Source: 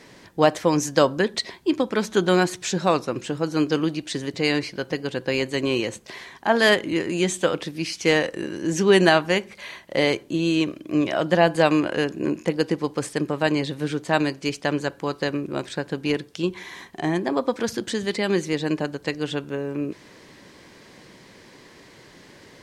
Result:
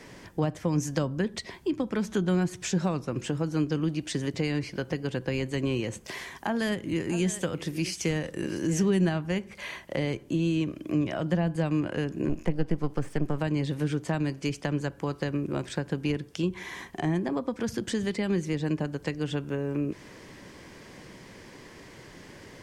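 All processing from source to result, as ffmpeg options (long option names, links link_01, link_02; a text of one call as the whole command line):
ffmpeg -i in.wav -filter_complex "[0:a]asettb=1/sr,asplit=3[link_01][link_02][link_03];[link_01]atrim=end=6.054[link_04];[link_02]atrim=start=6.05:end=9.01,asetpts=PTS-STARTPTS,afade=type=in:duration=0.004:curve=qsin,afade=type=out:start_time=2.956:duration=0.004:curve=qsin,highshelf=frequency=6600:gain=8.5,aecho=1:1:638:0.106,atrim=end_sample=130536[link_05];[link_03]atrim=start=9.006[link_06];[link_04][link_05]acrossfade=duration=0.004:curve1=hsin:curve2=qsin[link_07];[link_07][link_06]acrossfade=duration=0.004:curve1=qsin:curve2=hsin,asettb=1/sr,asplit=3[link_08][link_09][link_10];[link_08]atrim=end=12.294[link_11];[link_09]atrim=start=12.29:end=13.39,asetpts=PTS-STARTPTS,afade=type=in:duration=0.004:curve=qsin,afade=type=out:start_time=1.096:duration=0.004:curve=qsin,aeval=exprs='if(lt(val(0),0),0.447*val(0),val(0))':channel_layout=same,acrossover=split=2900[link_12][link_13];[link_13]acompressor=threshold=-47dB:ratio=4:attack=1:release=60[link_14];[link_12][link_14]amix=inputs=2:normalize=0[link_15];[link_10]atrim=start=13.386[link_16];[link_11][link_15]acrossfade=duration=0.004:curve1=hsin:curve2=qsin[link_17];[link_17][link_16]acrossfade=duration=0.004:curve1=qsin:curve2=hsin,lowshelf=frequency=100:gain=8.5,acrossover=split=220[link_18][link_19];[link_19]acompressor=threshold=-29dB:ratio=10[link_20];[link_18][link_20]amix=inputs=2:normalize=0,equalizer=frequency=4000:width=4.3:gain=-6" out.wav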